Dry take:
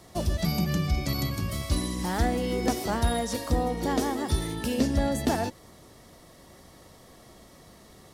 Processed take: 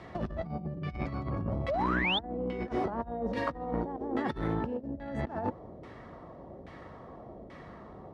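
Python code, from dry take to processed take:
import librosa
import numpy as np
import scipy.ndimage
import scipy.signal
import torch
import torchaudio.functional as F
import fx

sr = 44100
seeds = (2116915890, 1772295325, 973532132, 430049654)

y = fx.highpass(x, sr, hz=49.0, slope=6)
y = fx.over_compress(y, sr, threshold_db=-32.0, ratio=-0.5)
y = fx.filter_lfo_lowpass(y, sr, shape='saw_down', hz=1.2, low_hz=510.0, high_hz=2300.0, q=1.4)
y = fx.spec_paint(y, sr, seeds[0], shape='rise', start_s=1.68, length_s=0.51, low_hz=510.0, high_hz=3700.0, level_db=-29.0)
y = fx.transformer_sat(y, sr, knee_hz=430.0)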